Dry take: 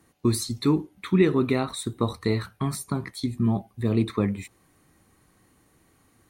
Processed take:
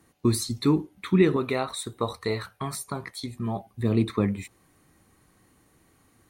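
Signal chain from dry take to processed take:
0:01.36–0:03.67: low shelf with overshoot 390 Hz −6.5 dB, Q 1.5

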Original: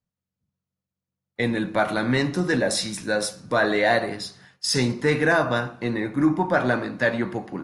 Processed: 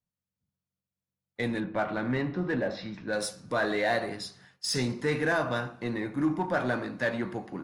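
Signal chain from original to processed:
0:01.60–0:03.13: Gaussian smoothing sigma 2.7 samples
in parallel at −7 dB: gain into a clipping stage and back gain 25.5 dB
on the sum: level −8.5 dB

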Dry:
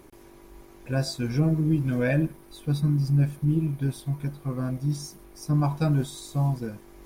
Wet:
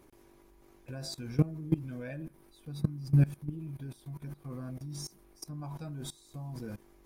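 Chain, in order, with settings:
output level in coarse steps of 20 dB

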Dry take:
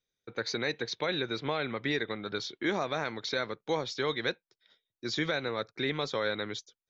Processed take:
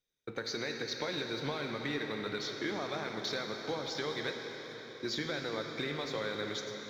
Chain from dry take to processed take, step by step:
downward compressor 6 to 1, threshold −38 dBFS, peak gain reduction 12.5 dB
leveller curve on the samples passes 1
on a send: convolution reverb RT60 5.1 s, pre-delay 5 ms, DRR 2.5 dB

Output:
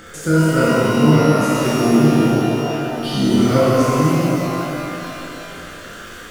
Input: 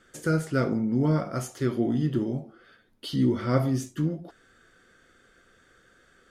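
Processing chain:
upward compression, threshold −36 dBFS
on a send: flutter between parallel walls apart 5.9 metres, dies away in 0.31 s
on the sum: surface crackle 24 per second −34 dBFS
reverb with rising layers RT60 3.1 s, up +12 semitones, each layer −8 dB, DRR −8 dB
level +2.5 dB

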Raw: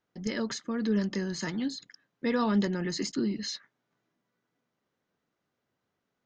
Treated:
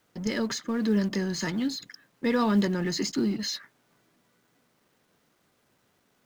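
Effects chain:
mu-law and A-law mismatch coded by mu
level +2 dB

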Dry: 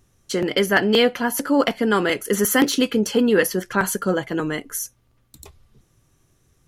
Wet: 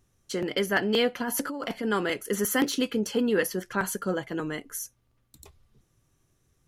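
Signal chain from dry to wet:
0:01.20–0:01.85: compressor whose output falls as the input rises −23 dBFS, ratio −1
level −7.5 dB

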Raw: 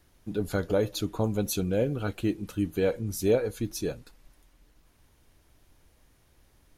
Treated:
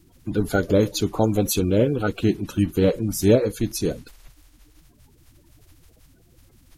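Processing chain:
spectral magnitudes quantised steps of 30 dB
level +8 dB

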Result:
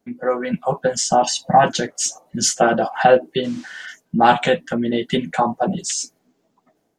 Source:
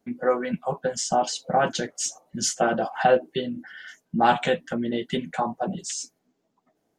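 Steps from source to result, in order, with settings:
0:01.23–0:01.64: comb filter 1.1 ms, depth 85%
automatic gain control gain up to 7 dB
0:03.43–0:03.85: noise in a band 530–6,800 Hz −48 dBFS
level +1 dB

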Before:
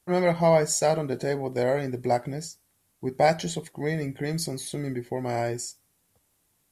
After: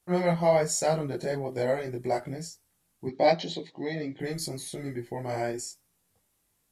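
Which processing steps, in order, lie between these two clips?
0:03.07–0:04.20: loudspeaker in its box 140–5,300 Hz, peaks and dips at 150 Hz −6 dB, 290 Hz +5 dB, 1,500 Hz −9 dB, 3,900 Hz +9 dB
multi-voice chorus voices 4, 1.1 Hz, delay 20 ms, depth 3.3 ms

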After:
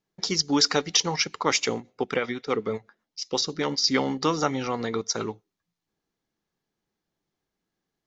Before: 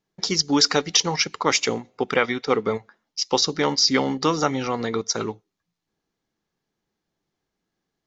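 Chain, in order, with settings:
0:01.80–0:03.84: rotating-speaker cabinet horn 8 Hz
level −3 dB

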